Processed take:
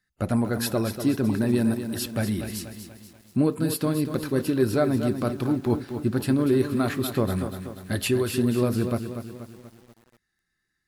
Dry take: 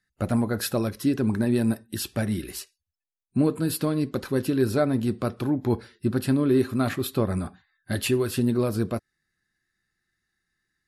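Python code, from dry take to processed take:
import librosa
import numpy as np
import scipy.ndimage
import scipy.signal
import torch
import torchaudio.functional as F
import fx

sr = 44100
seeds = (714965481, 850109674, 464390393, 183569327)

y = fx.echo_crushed(x, sr, ms=241, feedback_pct=55, bits=8, wet_db=-9)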